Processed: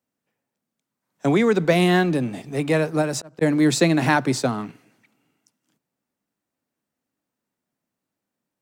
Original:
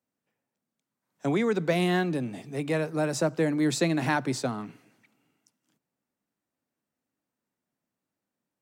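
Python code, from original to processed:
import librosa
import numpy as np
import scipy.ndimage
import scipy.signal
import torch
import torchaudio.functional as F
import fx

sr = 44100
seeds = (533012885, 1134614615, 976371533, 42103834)

p1 = fx.auto_swell(x, sr, attack_ms=582.0, at=(3.01, 3.41), fade=0.02)
p2 = np.sign(p1) * np.maximum(np.abs(p1) - 10.0 ** (-46.5 / 20.0), 0.0)
p3 = p1 + (p2 * librosa.db_to_amplitude(-3.0))
y = p3 * librosa.db_to_amplitude(3.0)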